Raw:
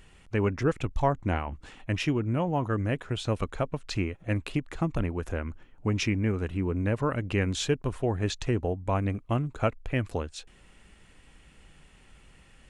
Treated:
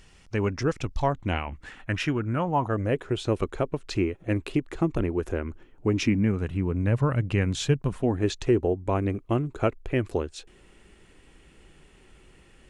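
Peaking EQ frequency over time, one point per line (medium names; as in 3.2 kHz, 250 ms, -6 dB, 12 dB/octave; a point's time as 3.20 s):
peaking EQ +10 dB 0.62 oct
0.87 s 5.4 kHz
1.80 s 1.5 kHz
2.35 s 1.5 kHz
3.01 s 370 Hz
5.90 s 370 Hz
6.42 s 130 Hz
7.74 s 130 Hz
8.27 s 370 Hz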